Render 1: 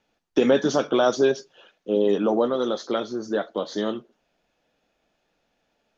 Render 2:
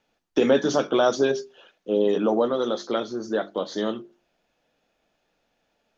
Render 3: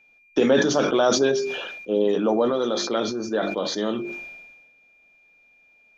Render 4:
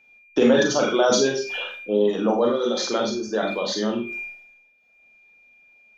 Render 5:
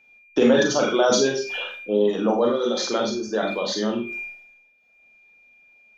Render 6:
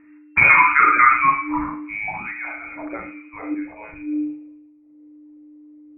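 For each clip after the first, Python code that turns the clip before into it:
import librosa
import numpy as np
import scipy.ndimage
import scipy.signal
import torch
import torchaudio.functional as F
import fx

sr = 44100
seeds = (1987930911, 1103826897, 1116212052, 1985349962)

y1 = fx.hum_notches(x, sr, base_hz=50, count=8)
y2 = y1 + 10.0 ** (-55.0 / 20.0) * np.sin(2.0 * np.pi * 2400.0 * np.arange(len(y1)) / sr)
y2 = fx.sustainer(y2, sr, db_per_s=40.0)
y3 = fx.dereverb_blind(y2, sr, rt60_s=0.97)
y3 = fx.doubler(y3, sr, ms=42.0, db=-13.0)
y3 = fx.rev_schroeder(y3, sr, rt60_s=0.31, comb_ms=30, drr_db=2.5)
y4 = y3
y5 = fx.freq_invert(y4, sr, carrier_hz=2700)
y5 = fx.filter_sweep_lowpass(y5, sr, from_hz=1700.0, to_hz=510.0, start_s=0.1, end_s=3.42, q=3.6)
y5 = fx.echo_wet_highpass(y5, sr, ms=112, feedback_pct=43, hz=1800.0, wet_db=-10.5)
y5 = y5 * 10.0 ** (6.0 / 20.0)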